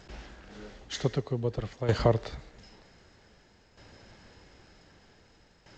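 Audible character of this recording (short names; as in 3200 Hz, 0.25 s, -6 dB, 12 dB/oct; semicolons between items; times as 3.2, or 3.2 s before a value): tremolo saw down 0.53 Hz, depth 70%; G.722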